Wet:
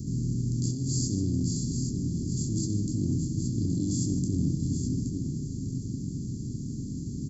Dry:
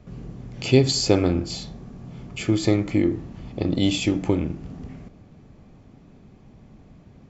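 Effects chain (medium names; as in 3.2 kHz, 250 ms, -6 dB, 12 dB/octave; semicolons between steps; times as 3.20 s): spectral levelling over time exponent 0.4; inverse Chebyshev band-stop 670–2500 Hz, stop band 60 dB; compressor with a negative ratio -21 dBFS, ratio -1; on a send: multi-tap echo 66/147/697/822 ms -11/-13/-18.5/-7 dB; on the sum: trim -6.5 dB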